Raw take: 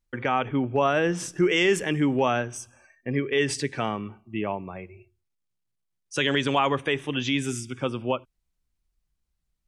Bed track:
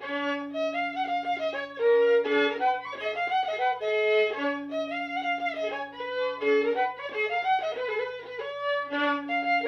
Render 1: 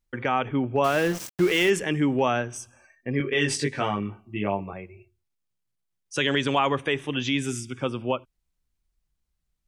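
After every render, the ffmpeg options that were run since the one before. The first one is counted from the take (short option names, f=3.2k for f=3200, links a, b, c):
-filter_complex "[0:a]asettb=1/sr,asplit=3[a][b][c];[a]atrim=end=0.844[d];[b]atrim=start=0.84:end=1.7,asetpts=PTS-STARTPTS,afade=t=in:d=0.004:c=qsin,afade=t=out:st=0.856:d=0.004:c=qsin,aeval=exprs='val(0)*gte(abs(val(0)),0.0316)':c=same[e];[c]atrim=start=1.696[f];[d][e]acrossfade=d=0.004:c1=hsin:c2=qsin[g];[g][f]acrossfade=d=0.004:c1=qsin:c2=hsin,asettb=1/sr,asplit=3[h][i][j];[h]atrim=end=3.184[k];[i]atrim=start=3.18:end=4.73,asetpts=PTS-STARTPTS,afade=t=in:d=0.004:c=qsin,afade=t=out:st=1.546:d=0.004:c=qsin,asplit=2[l][m];[m]adelay=20,volume=-2dB[n];[l][n]amix=inputs=2:normalize=0,atrim=end_sample=68355[o];[j]atrim=start=4.726[p];[k][o]acrossfade=d=0.004:c1=hsin:c2=qsin[q];[q][p]acrossfade=d=0.004:c1=qsin:c2=hsin"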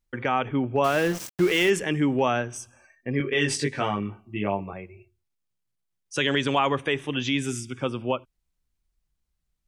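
-af anull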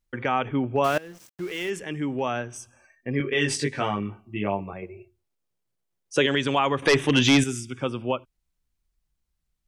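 -filter_complex "[0:a]asettb=1/sr,asplit=3[a][b][c];[a]atrim=end=4.824[d];[b]atrim=start=4.82:end=6.26,asetpts=PTS-STARTPTS,afade=t=in:d=0.004:c=qsin,afade=t=out:st=1.436:d=0.004:c=qsin,equalizer=f=480:t=o:w=1.7:g=9[e];[c]atrim=start=6.256[f];[d][e]acrossfade=d=0.004:c1=hsin:c2=qsin[g];[g][f]acrossfade=d=0.004:c1=qsin:c2=hsin,asettb=1/sr,asplit=3[h][i][j];[h]atrim=end=6.824[k];[i]atrim=start=6.82:end=7.44,asetpts=PTS-STARTPTS,afade=t=in:d=0.004:c=qsin,afade=t=out:st=0.616:d=0.004:c=qsin,aeval=exprs='0.266*sin(PI/2*2*val(0)/0.266)':c=same[l];[j]atrim=start=7.436[m];[k][l]acrossfade=d=0.004:c1=hsin:c2=qsin[n];[n][m]acrossfade=d=0.004:c1=qsin:c2=hsin,asplit=2[o][p];[o]atrim=end=0.98,asetpts=PTS-STARTPTS,afade=t=out:st=0.976:d=0.004:c=hsin:silence=0.0841395[q];[p]atrim=start=0.98,asetpts=PTS-STARTPTS,afade=t=in:d=2.19:silence=0.0841395[r];[q][r]concat=n=2:v=0:a=1"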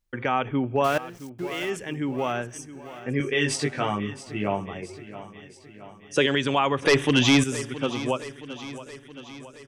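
-af "aecho=1:1:671|1342|2013|2684|3355|4026:0.178|0.103|0.0598|0.0347|0.0201|0.0117"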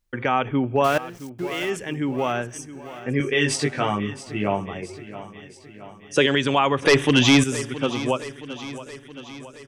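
-af "volume=3dB"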